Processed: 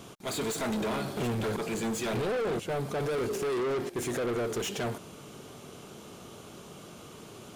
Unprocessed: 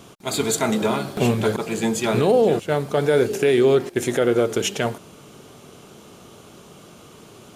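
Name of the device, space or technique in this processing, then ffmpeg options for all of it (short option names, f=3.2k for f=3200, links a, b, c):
saturation between pre-emphasis and de-emphasis: -af "highshelf=f=4.6k:g=7.5,asoftclip=type=tanh:threshold=-26dB,highshelf=f=4.6k:g=-7.5,volume=-2dB"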